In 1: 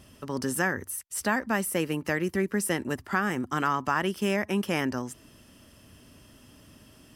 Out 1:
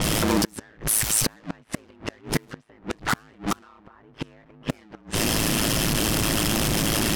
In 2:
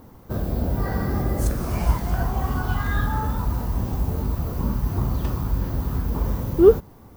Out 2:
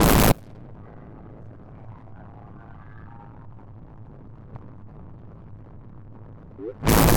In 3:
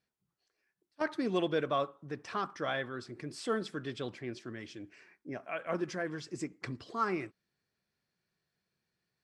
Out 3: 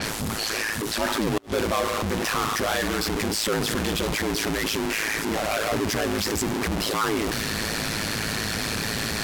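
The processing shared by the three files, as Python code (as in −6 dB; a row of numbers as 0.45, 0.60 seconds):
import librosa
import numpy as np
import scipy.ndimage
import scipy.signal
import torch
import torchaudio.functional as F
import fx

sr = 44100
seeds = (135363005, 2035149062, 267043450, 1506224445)

y = x + 0.5 * 10.0 ** (-18.0 / 20.0) * np.sign(x)
y = fx.gate_flip(y, sr, shuts_db=-15.0, range_db=-32)
y = fx.env_lowpass(y, sr, base_hz=1200.0, full_db=-23.5)
y = y * np.sin(2.0 * np.pi * 54.0 * np.arange(len(y)) / sr)
y = y * 10.0 ** (-26 / 20.0) / np.sqrt(np.mean(np.square(y)))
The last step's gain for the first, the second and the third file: +4.0, +11.5, +0.5 decibels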